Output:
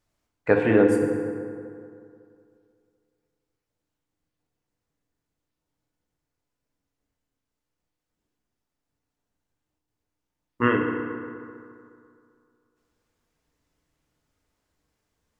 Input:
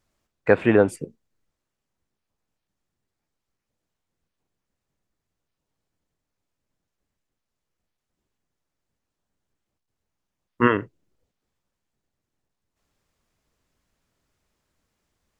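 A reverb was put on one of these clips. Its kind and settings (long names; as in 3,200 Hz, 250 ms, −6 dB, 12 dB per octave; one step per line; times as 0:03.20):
feedback delay network reverb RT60 2.4 s, low-frequency decay 0.95×, high-frequency decay 0.5×, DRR 1.5 dB
level −3.5 dB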